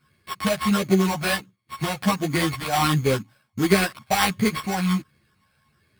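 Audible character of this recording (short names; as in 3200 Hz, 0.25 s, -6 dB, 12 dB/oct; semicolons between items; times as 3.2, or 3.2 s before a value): a buzz of ramps at a fixed pitch in blocks of 8 samples; phasing stages 12, 1.4 Hz, lowest notch 340–1100 Hz; aliases and images of a low sample rate 6600 Hz, jitter 0%; a shimmering, thickened sound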